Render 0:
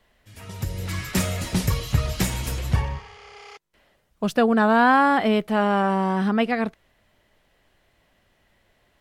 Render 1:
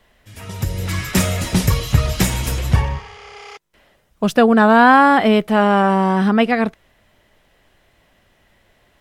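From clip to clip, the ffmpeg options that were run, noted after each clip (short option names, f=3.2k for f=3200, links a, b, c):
-af "bandreject=f=4.4k:w=25,volume=6.5dB"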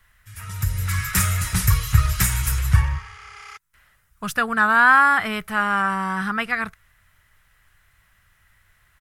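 -af "firequalizer=gain_entry='entry(100,0);entry(240,-18);entry(600,-18);entry(1300,3);entry(3100,-7);entry(9700,4)':delay=0.05:min_phase=1"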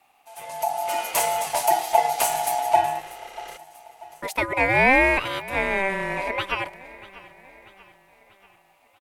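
-af "aecho=1:1:639|1278|1917|2556:0.112|0.0572|0.0292|0.0149,aeval=exprs='val(0)*sin(2*PI*780*n/s)':c=same"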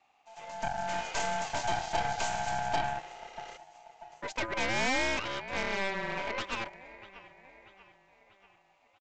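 -af "aeval=exprs='0.708*(cos(1*acos(clip(val(0)/0.708,-1,1)))-cos(1*PI/2))+0.126*(cos(8*acos(clip(val(0)/0.708,-1,1)))-cos(8*PI/2))':c=same,aresample=16000,asoftclip=type=tanh:threshold=-15dB,aresample=44100,volume=-7dB"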